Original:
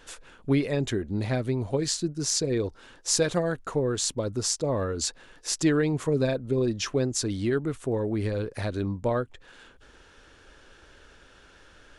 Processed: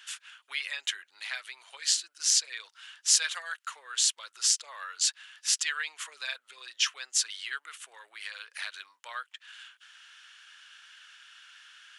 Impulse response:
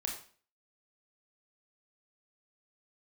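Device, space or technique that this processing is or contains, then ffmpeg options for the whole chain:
headphones lying on a table: -af "highpass=f=1.4k:w=0.5412,highpass=f=1.4k:w=1.3066,equalizer=f=3k:t=o:w=0.34:g=7,volume=3dB"

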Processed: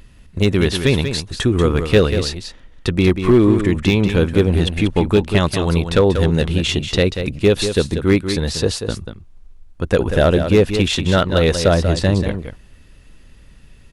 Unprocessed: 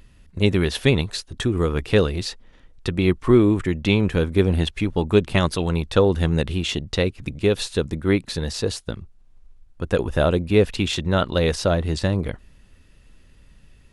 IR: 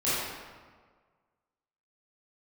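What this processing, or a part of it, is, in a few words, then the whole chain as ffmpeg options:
limiter into clipper: -af "alimiter=limit=-6.5dB:level=0:latency=1:release=397,asoftclip=type=hard:threshold=-11dB,aecho=1:1:188:0.376,volume=5.5dB"

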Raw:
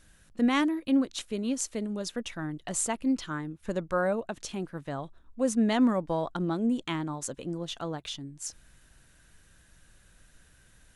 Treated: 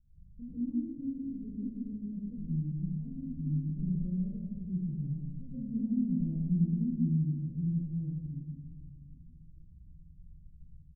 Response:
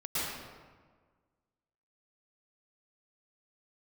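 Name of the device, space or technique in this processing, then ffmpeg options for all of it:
club heard from the street: -filter_complex "[0:a]alimiter=limit=-19dB:level=0:latency=1:release=362,lowpass=f=170:w=0.5412,lowpass=f=170:w=1.3066[a];[1:a]atrim=start_sample=2205[b];[a][b]afir=irnorm=-1:irlink=0,asplit=2[c][d];[d]adelay=761,lowpass=f=2k:p=1,volume=-23.5dB,asplit=2[e][f];[f]adelay=761,lowpass=f=2k:p=1,volume=0.49,asplit=2[g][h];[h]adelay=761,lowpass=f=2k:p=1,volume=0.49[i];[c][e][g][i]amix=inputs=4:normalize=0"

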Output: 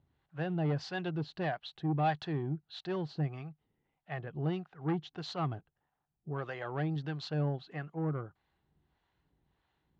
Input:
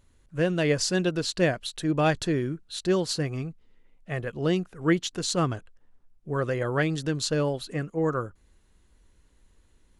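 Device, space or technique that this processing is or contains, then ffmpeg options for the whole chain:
guitar amplifier with harmonic tremolo: -filter_complex "[0:a]asettb=1/sr,asplit=3[a][b][c];[a]atrim=end=6.294[d];[b]atrim=start=6.29:end=6.96,asetpts=PTS-STARTPTS,afade=t=in:d=0.004:c=qsin,afade=t=out:st=0.666:d=0.004:c=qsin,bass=f=250:g=-5,treble=f=4k:g=6[e];[c]atrim=start=6.956[f];[d][e]acrossfade=d=0.004:c1=hsin:c2=qsin[g];[g][f]acrossfade=d=0.004:c1=qsin:c2=hsin,acrossover=split=550[h][i];[h]aeval=exprs='val(0)*(1-0.7/2+0.7/2*cos(2*PI*1.6*n/s))':c=same[j];[i]aeval=exprs='val(0)*(1-0.7/2-0.7/2*cos(2*PI*1.6*n/s))':c=same[k];[j][k]amix=inputs=2:normalize=0,asoftclip=type=tanh:threshold=-22dB,highpass=87,equalizer=f=150:t=q:w=4:g=8,equalizer=f=230:t=q:w=4:g=-5,equalizer=f=510:t=q:w=4:g=-6,equalizer=f=780:t=q:w=4:g=10,equalizer=f=2.4k:t=q:w=4:g=-3,lowpass=f=3.8k:w=0.5412,lowpass=f=3.8k:w=1.3066,volume=-5dB"

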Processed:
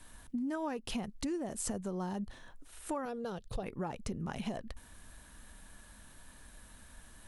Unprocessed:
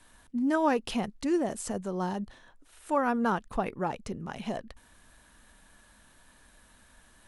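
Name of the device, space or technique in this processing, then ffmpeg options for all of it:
ASMR close-microphone chain: -filter_complex "[0:a]lowshelf=f=200:g=7,acompressor=threshold=-34dB:ratio=8,highshelf=f=8k:g=6.5,asettb=1/sr,asplit=3[a][b][c];[a]atrim=end=3.054[d];[b]atrim=start=3.05:end=3.63,asetpts=PTS-STARTPTS,afade=t=in:d=0.004:c=qsin,afade=t=out:st=0.576:d=0.004:c=qsin,equalizer=f=125:t=o:w=1:g=9,equalizer=f=250:t=o:w=1:g=-11,equalizer=f=500:t=o:w=1:g=9,equalizer=f=1k:t=o:w=1:g=-10,equalizer=f=2k:t=o:w=1:g=-6,equalizer=f=4k:t=o:w=1:g=10,equalizer=f=8k:t=o:w=1:g=-3[e];[c]atrim=start=3.626[f];[d][e]acrossfade=d=0.004:c1=hsin:c2=qsin[g];[g][f]acrossfade=d=0.004:c1=qsin:c2=hsin"

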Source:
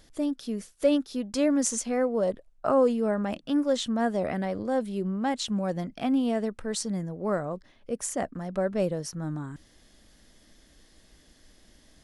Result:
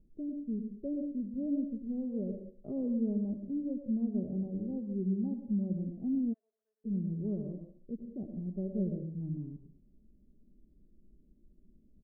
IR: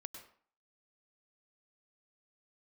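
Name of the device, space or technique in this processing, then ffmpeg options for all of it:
next room: -filter_complex "[0:a]lowpass=f=350:w=0.5412,lowpass=f=350:w=1.3066[a];[1:a]atrim=start_sample=2205[b];[a][b]afir=irnorm=-1:irlink=0,asplit=3[c][d][e];[c]afade=t=out:st=6.32:d=0.02[f];[d]highpass=f=1.4k:w=0.5412,highpass=f=1.4k:w=1.3066,afade=t=in:st=6.32:d=0.02,afade=t=out:st=6.84:d=0.02[g];[e]afade=t=in:st=6.84:d=0.02[h];[f][g][h]amix=inputs=3:normalize=0,aecho=1:1:5:0.41"

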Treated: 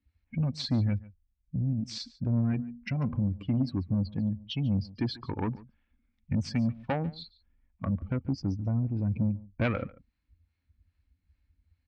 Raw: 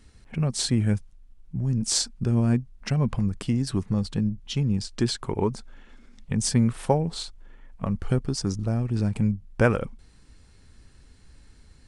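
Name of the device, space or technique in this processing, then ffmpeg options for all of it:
guitar amplifier with harmonic tremolo: -filter_complex "[0:a]asettb=1/sr,asplit=3[a][b][c];[a]atrim=end=2.504[d];[b]atrim=start=2.5:end=3.69,asetpts=PTS-STARTPTS,afade=t=in:d=0.004:c=qsin,afade=t=out:st=1.186:d=0.004:c=qsin,bandreject=f=79.83:t=h:w=4,bandreject=f=159.66:t=h:w=4,bandreject=f=239.49:t=h:w=4,bandreject=f=319.32:t=h:w=4,bandreject=f=399.15:t=h:w=4,bandreject=f=478.98:t=h:w=4,bandreject=f=558.81:t=h:w=4,bandreject=f=638.64:t=h:w=4,bandreject=f=718.47:t=h:w=4,bandreject=f=798.3:t=h:w=4,bandreject=f=878.13:t=h:w=4,bandreject=f=957.96:t=h:w=4,bandreject=f=1.03779k:t=h:w=4,bandreject=f=1.11762k:t=h:w=4,bandreject=f=1.19745k:t=h:w=4,bandreject=f=1.27728k:t=h:w=4,bandreject=f=1.35711k:t=h:w=4,bandreject=f=1.43694k:t=h:w=4,bandreject=f=1.51677k:t=h:w=4,bandreject=f=1.5966k:t=h:w=4,bandreject=f=1.67643k:t=h:w=4,bandreject=f=1.75626k:t=h:w=4,bandreject=f=1.83609k:t=h:w=4,bandreject=f=1.91592k:t=h:w=4[e];[c]atrim=start=3.686[f];[d][e]acrossfade=d=0.004:c1=hsin:c2=qsin[g];[g][f]acrossfade=d=0.004:c1=qsin:c2=hsin,afftdn=nr=24:nf=-33,acrossover=split=430[h][i];[h]aeval=exprs='val(0)*(1-0.5/2+0.5/2*cos(2*PI*2.5*n/s))':c=same[j];[i]aeval=exprs='val(0)*(1-0.5/2-0.5/2*cos(2*PI*2.5*n/s))':c=same[k];[j][k]amix=inputs=2:normalize=0,asoftclip=type=tanh:threshold=-22.5dB,highpass=78,equalizer=f=87:t=q:w=4:g=9,equalizer=f=280:t=q:w=4:g=7,equalizer=f=410:t=q:w=4:g=-10,equalizer=f=2.3k:t=q:w=4:g=8,lowpass=f=4.3k:w=0.5412,lowpass=f=4.3k:w=1.3066,aecho=1:1:143:0.0944"

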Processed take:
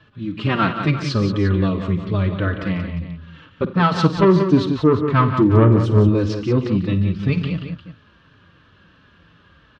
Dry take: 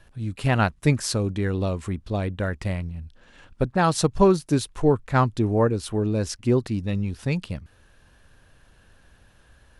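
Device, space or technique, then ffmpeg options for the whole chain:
barber-pole flanger into a guitar amplifier: -filter_complex "[0:a]asettb=1/sr,asplit=3[a][b][c];[a]atrim=end=5.304[d];[b]atrim=start=5.3:end=6.08,asetpts=PTS-STARTPTS,afade=t=in:d=0.004:c=qsin,afade=t=out:st=0.776:d=0.004:c=qsin,equalizer=f=125:t=o:w=1:g=12,equalizer=f=500:t=o:w=1:g=7,equalizer=f=1k:t=o:w=1:g=-5,equalizer=f=4k:t=o:w=1:g=-8,equalizer=f=8k:t=o:w=1:g=7[e];[c]atrim=start=6.076[f];[d][e]acrossfade=d=0.004:c1=hsin:c2=qsin[g];[g][f]acrossfade=d=0.004:c1=qsin:c2=hsin,asplit=2[h][i];[i]adelay=4.1,afreqshift=-2.9[j];[h][j]amix=inputs=2:normalize=1,asoftclip=type=tanh:threshold=-16.5dB,highpass=88,equalizer=f=98:t=q:w=4:g=5,equalizer=f=170:t=q:w=4:g=8,equalizer=f=300:t=q:w=4:g=6,equalizer=f=750:t=q:w=4:g=-8,equalizer=f=1.2k:t=q:w=4:g=9,equalizer=f=3.1k:t=q:w=4:g=5,lowpass=f=4.5k:w=0.5412,lowpass=f=4.5k:w=1.3066,aecho=1:1:52|87|144|180|352:0.211|0.106|0.224|0.376|0.2,volume=6dB"

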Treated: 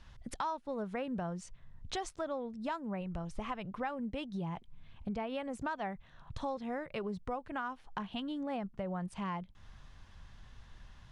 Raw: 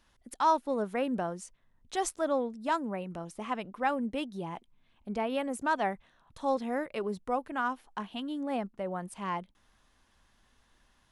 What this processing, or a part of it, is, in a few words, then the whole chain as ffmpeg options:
jukebox: -filter_complex "[0:a]lowpass=5.8k,lowshelf=f=190:t=q:w=1.5:g=9.5,acompressor=threshold=-44dB:ratio=4,asplit=3[a][b][c];[a]afade=t=out:st=3:d=0.02[d];[b]asubboost=boost=5:cutoff=76,afade=t=in:st=3:d=0.02,afade=t=out:st=3.6:d=0.02[e];[c]afade=t=in:st=3.6:d=0.02[f];[d][e][f]amix=inputs=3:normalize=0,volume=6.5dB"

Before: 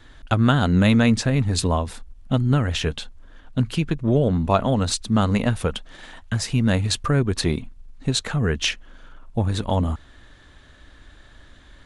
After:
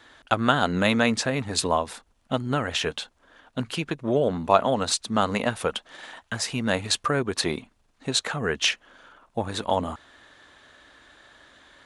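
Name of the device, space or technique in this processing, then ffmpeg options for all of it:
filter by subtraction: -filter_complex "[0:a]asplit=2[a][b];[b]lowpass=720,volume=-1[c];[a][c]amix=inputs=2:normalize=0"

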